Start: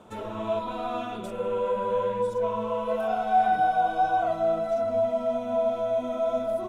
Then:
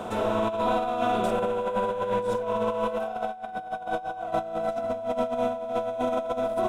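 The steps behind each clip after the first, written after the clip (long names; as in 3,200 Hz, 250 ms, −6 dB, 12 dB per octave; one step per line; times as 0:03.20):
compressor on every frequency bin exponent 0.6
compressor whose output falls as the input rises −27 dBFS, ratio −0.5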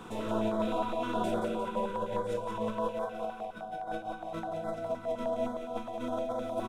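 repeating echo 176 ms, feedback 57%, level −5.5 dB
rectangular room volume 95 cubic metres, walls mixed, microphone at 0.63 metres
notch on a step sequencer 9.7 Hz 610–2,700 Hz
level −7.5 dB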